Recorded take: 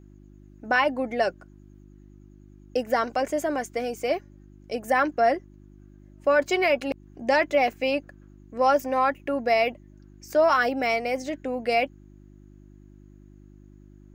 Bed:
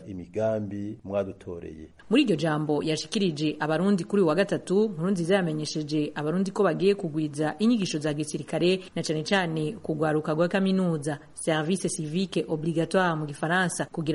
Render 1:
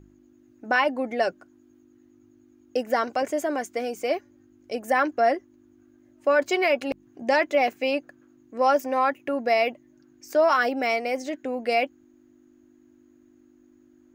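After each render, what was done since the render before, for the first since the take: de-hum 50 Hz, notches 4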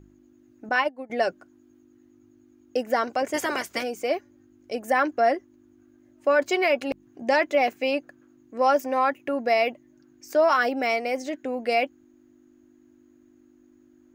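0.69–1.10 s: upward expansion 2.5:1, over -32 dBFS; 3.33–3.82 s: spectral peaks clipped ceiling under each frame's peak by 22 dB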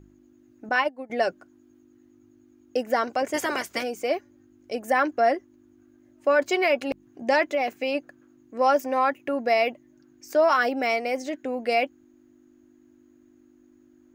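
7.43–7.95 s: compression 2:1, threshold -23 dBFS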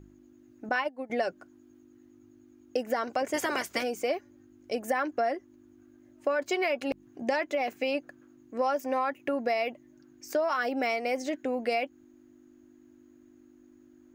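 compression, threshold -25 dBFS, peak gain reduction 9 dB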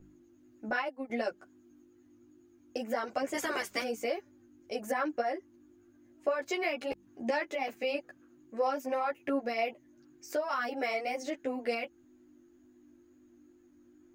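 wow and flutter 22 cents; three-phase chorus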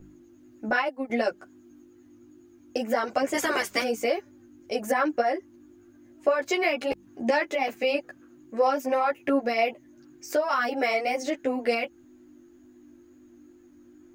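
trim +7.5 dB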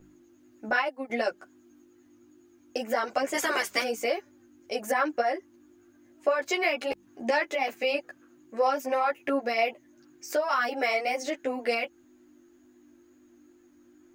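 bass shelf 330 Hz -9 dB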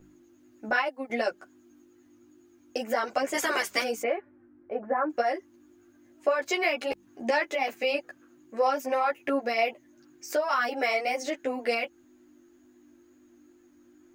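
4.02–5.09 s: low-pass 2.5 kHz -> 1.3 kHz 24 dB/octave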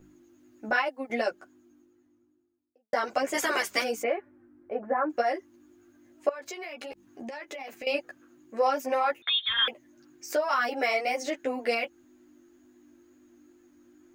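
1.10–2.93 s: studio fade out; 6.29–7.87 s: compression 8:1, threshold -36 dBFS; 9.22–9.68 s: frequency inversion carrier 3.9 kHz

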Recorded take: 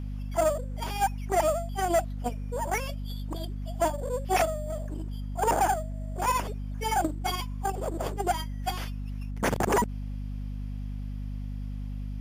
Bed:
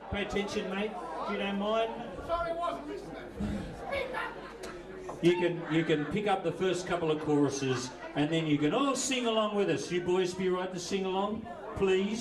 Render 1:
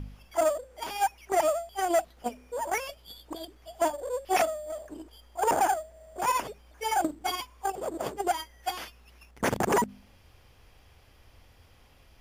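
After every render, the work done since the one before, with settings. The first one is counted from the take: de-hum 50 Hz, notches 5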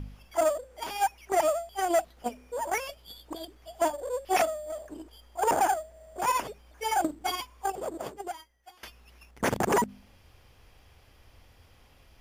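7.80–8.83 s: fade out quadratic, to -21.5 dB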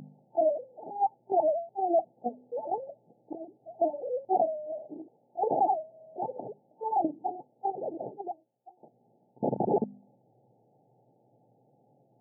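FFT band-pass 110–890 Hz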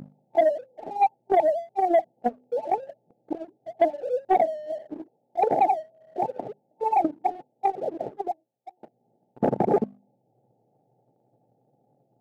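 transient shaper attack +6 dB, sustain -2 dB; waveshaping leveller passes 1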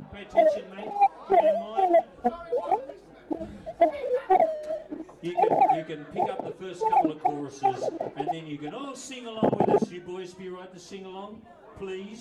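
add bed -8.5 dB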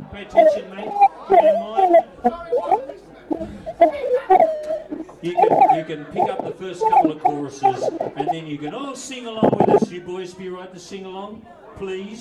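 trim +7.5 dB

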